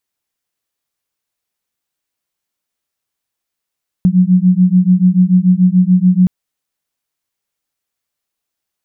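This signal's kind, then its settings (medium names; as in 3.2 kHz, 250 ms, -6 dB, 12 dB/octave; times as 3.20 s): beating tones 179 Hz, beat 6.9 Hz, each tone -10 dBFS 2.22 s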